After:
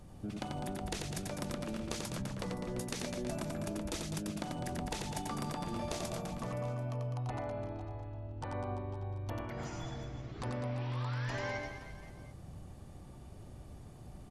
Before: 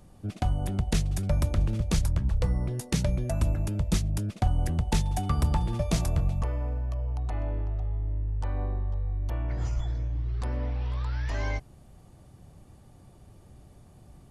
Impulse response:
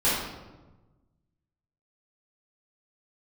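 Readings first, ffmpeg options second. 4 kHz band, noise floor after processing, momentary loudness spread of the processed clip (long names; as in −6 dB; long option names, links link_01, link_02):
−4.0 dB, −51 dBFS, 13 LU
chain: -filter_complex "[0:a]afftfilt=real='re*lt(hypot(re,im),0.251)':imag='im*lt(hypot(re,im),0.251)':win_size=1024:overlap=0.75,highshelf=frequency=9700:gain=-5,acompressor=threshold=-36dB:ratio=10,asplit=2[link_01][link_02];[link_02]aecho=0:1:90|202.5|343.1|518.9|738.6:0.631|0.398|0.251|0.158|0.1[link_03];[link_01][link_03]amix=inputs=2:normalize=0"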